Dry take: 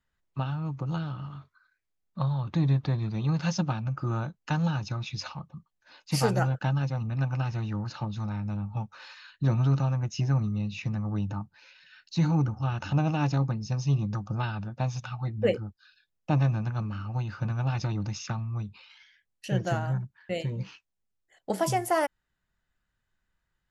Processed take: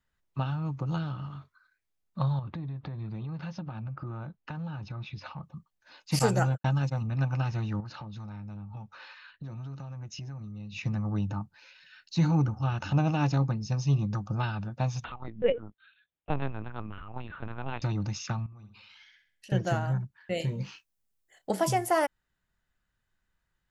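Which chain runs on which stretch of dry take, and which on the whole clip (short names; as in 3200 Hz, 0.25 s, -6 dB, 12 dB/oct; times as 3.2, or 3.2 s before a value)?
2.39–5.43 compressor 12:1, threshold -33 dBFS + air absorption 260 m
6.19–7.02 gate -33 dBFS, range -55 dB + bell 7600 Hz +13 dB 0.28 oct
7.8–10.76 low-pass opened by the level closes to 2600 Hz, open at -23.5 dBFS + compressor, threshold -38 dBFS
15.04–17.82 HPF 200 Hz + LPC vocoder at 8 kHz pitch kept
18.46–19.52 compressor 3:1, threshold -51 dBFS + flutter echo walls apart 11 m, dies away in 0.48 s
20.37–21.51 high shelf 7500 Hz +10 dB + doubler 30 ms -10 dB
whole clip: dry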